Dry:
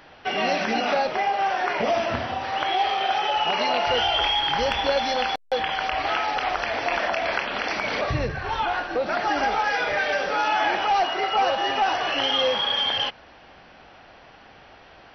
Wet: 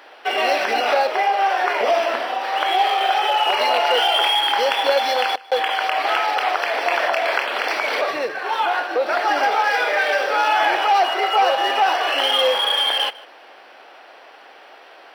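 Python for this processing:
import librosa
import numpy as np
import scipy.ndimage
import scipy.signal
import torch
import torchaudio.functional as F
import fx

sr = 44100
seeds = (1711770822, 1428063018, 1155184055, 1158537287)

y = scipy.ndimage.median_filter(x, 5, mode='constant')
y = scipy.signal.sosfilt(scipy.signal.butter(4, 360.0, 'highpass', fs=sr, output='sos'), y)
y = y + 10.0 ** (-22.0 / 20.0) * np.pad(y, (int(153 * sr / 1000.0), 0))[:len(y)]
y = y * librosa.db_to_amplitude(5.0)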